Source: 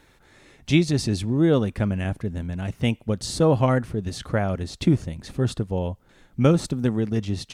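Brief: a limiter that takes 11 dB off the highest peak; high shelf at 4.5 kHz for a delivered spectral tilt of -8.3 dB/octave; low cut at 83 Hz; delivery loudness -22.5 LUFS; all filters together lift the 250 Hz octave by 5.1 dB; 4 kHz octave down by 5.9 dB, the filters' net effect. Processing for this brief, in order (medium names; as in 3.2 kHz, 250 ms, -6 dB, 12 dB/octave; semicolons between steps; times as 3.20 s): high-pass 83 Hz; peaking EQ 250 Hz +7 dB; peaking EQ 4 kHz -3.5 dB; treble shelf 4.5 kHz -7.5 dB; trim +2 dB; peak limiter -11 dBFS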